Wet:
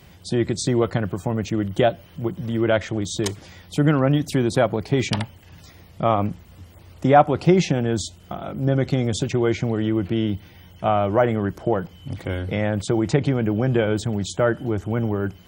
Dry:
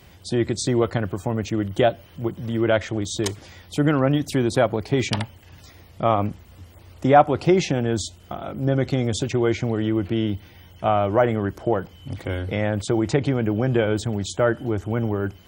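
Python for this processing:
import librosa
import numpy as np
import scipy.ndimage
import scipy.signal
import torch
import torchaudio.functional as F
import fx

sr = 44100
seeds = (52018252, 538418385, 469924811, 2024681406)

y = fx.peak_eq(x, sr, hz=170.0, db=6.5, octaves=0.38)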